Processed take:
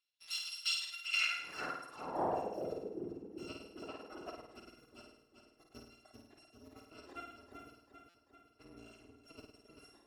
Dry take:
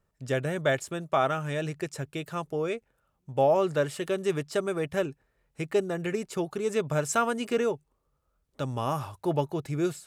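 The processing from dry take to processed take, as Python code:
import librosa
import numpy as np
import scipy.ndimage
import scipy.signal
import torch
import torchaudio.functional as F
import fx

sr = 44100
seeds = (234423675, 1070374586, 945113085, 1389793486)

p1 = fx.bit_reversed(x, sr, seeds[0], block=256)
p2 = fx.dmg_wind(p1, sr, seeds[1], corner_hz=400.0, level_db=-27.0, at=(1.23, 2.47), fade=0.02)
p3 = fx.rider(p2, sr, range_db=10, speed_s=2.0)
p4 = fx.high_shelf(p3, sr, hz=9400.0, db=-12.0)
p5 = fx.echo_feedback(p4, sr, ms=392, feedback_pct=59, wet_db=-7.0)
p6 = fx.filter_sweep_bandpass(p5, sr, from_hz=3600.0, to_hz=350.0, start_s=0.78, end_s=3.12, q=2.4)
p7 = fx.dereverb_blind(p6, sr, rt60_s=1.8)
p8 = fx.peak_eq(p7, sr, hz=1000.0, db=14.0, octaves=2.5, at=(3.82, 4.44))
p9 = p8 + fx.room_flutter(p8, sr, wall_m=9.0, rt60_s=0.74, dry=0)
y = fx.buffer_glitch(p9, sr, at_s=(8.09,), block=256, repeats=8)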